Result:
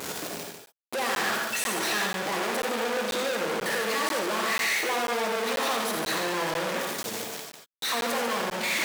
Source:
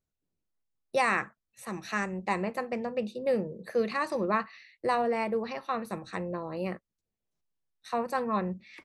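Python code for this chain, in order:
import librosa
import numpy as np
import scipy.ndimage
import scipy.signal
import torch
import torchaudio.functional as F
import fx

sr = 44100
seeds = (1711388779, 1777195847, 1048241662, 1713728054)

p1 = np.sign(x) * np.sqrt(np.mean(np.square(x)))
p2 = fx.vibrato(p1, sr, rate_hz=0.86, depth_cents=8.3)
p3 = scipy.signal.sosfilt(scipy.signal.butter(2, 320.0, 'highpass', fs=sr, output='sos'), p2)
p4 = fx.high_shelf(p3, sr, hz=6000.0, db=-4.5)
p5 = p4 + fx.echo_single(p4, sr, ms=148, db=-6.5, dry=0)
p6 = fx.rev_gated(p5, sr, seeds[0], gate_ms=110, shape='rising', drr_db=2.0)
p7 = fx.buffer_crackle(p6, sr, first_s=0.66, period_s=0.49, block=512, kind='zero')
p8 = fx.transformer_sat(p7, sr, knee_hz=1600.0)
y = F.gain(torch.from_numpy(p8), 5.5).numpy()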